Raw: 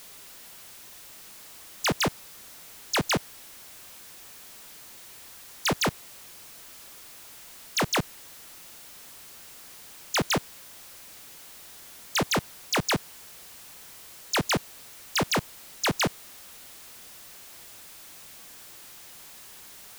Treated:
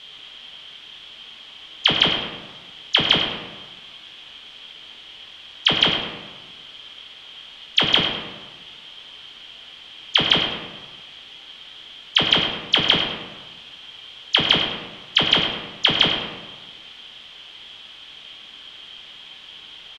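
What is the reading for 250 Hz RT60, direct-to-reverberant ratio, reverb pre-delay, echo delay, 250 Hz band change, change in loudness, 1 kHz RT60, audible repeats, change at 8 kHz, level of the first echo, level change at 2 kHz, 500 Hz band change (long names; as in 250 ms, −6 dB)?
1.3 s, 0.0 dB, 4 ms, 103 ms, +2.5 dB, +9.0 dB, 1.3 s, 1, −11.0 dB, −8.5 dB, +7.0 dB, +2.5 dB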